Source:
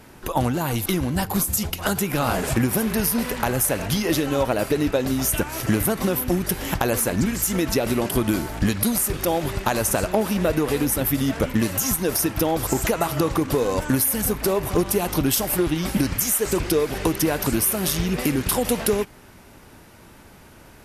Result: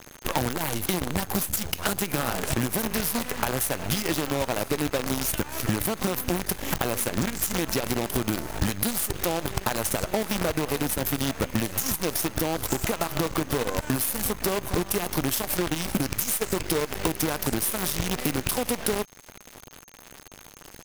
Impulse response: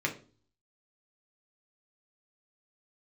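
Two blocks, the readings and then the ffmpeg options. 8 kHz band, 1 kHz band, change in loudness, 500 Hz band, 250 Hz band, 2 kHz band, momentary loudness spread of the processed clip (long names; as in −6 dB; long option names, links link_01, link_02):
−4.0 dB, −4.0 dB, −4.5 dB, −6.0 dB, −6.5 dB, −2.5 dB, 3 LU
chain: -af "acrusher=bits=4:dc=4:mix=0:aa=0.000001,acompressor=threshold=-25dB:ratio=6,aeval=exprs='val(0)+0.001*sin(2*PI*6400*n/s)':channel_layout=same,volume=3dB"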